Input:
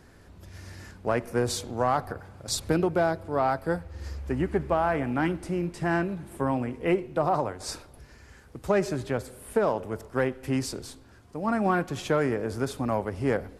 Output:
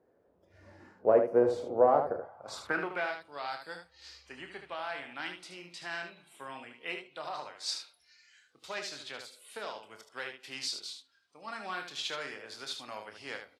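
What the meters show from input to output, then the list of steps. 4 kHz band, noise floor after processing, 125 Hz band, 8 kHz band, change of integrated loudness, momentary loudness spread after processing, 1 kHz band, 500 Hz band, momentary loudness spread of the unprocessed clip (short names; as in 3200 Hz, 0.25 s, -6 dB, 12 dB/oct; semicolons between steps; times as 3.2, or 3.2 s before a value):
+0.5 dB, -69 dBFS, -22.0 dB, -8.0 dB, -5.5 dB, 20 LU, -7.0 dB, -4.5 dB, 14 LU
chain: spectral noise reduction 13 dB; band-pass sweep 520 Hz -> 3900 Hz, 2.1–3.31; early reflections 28 ms -9 dB, 75 ms -7 dB; gain +6 dB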